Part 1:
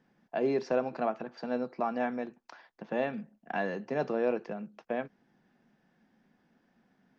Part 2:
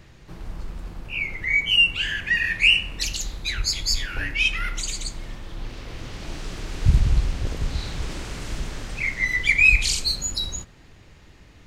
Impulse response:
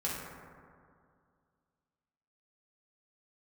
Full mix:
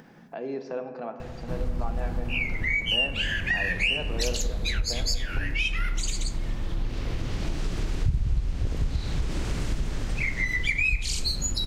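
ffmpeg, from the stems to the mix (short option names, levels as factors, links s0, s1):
-filter_complex "[0:a]volume=0.398,asplit=2[s0][s1];[s1]volume=0.355[s2];[1:a]lowshelf=f=430:g=7.5,acompressor=threshold=0.0501:ratio=4,adelay=1200,volume=1.26[s3];[2:a]atrim=start_sample=2205[s4];[s2][s4]afir=irnorm=-1:irlink=0[s5];[s0][s3][s5]amix=inputs=3:normalize=0,acompressor=mode=upward:threshold=0.0224:ratio=2.5"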